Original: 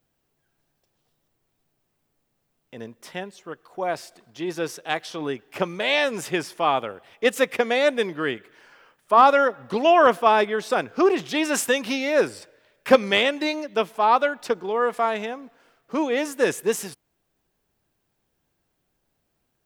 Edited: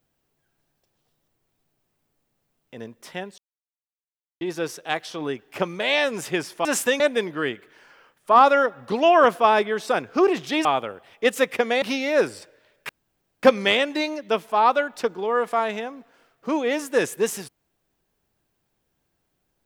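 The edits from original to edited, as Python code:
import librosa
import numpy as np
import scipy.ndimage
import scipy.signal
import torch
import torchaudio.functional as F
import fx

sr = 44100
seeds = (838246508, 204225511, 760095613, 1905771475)

y = fx.edit(x, sr, fx.silence(start_s=3.38, length_s=1.03),
    fx.swap(start_s=6.65, length_s=1.17, other_s=11.47, other_length_s=0.35),
    fx.insert_room_tone(at_s=12.89, length_s=0.54), tone=tone)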